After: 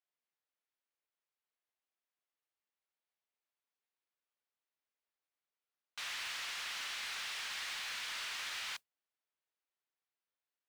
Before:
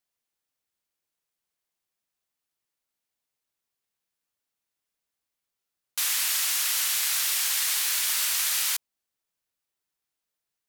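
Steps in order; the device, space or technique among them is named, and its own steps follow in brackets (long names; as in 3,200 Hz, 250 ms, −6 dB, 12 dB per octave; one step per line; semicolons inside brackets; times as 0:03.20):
carbon microphone (band-pass filter 380–3,300 Hz; soft clipping −29.5 dBFS, distortion −16 dB; noise that follows the level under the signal 20 dB)
level −5.5 dB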